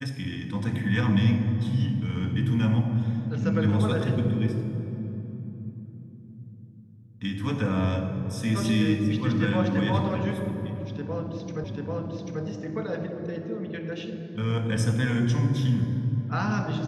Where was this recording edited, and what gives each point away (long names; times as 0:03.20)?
0:11.64: the same again, the last 0.79 s